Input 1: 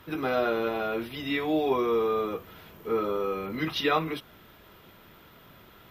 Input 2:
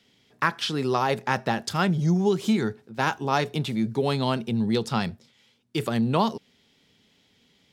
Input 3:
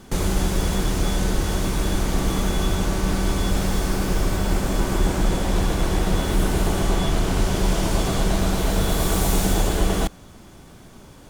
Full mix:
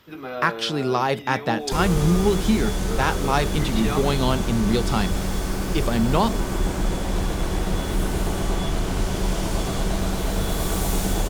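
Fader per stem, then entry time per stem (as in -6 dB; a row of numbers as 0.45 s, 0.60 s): -5.0 dB, +2.0 dB, -3.0 dB; 0.00 s, 0.00 s, 1.60 s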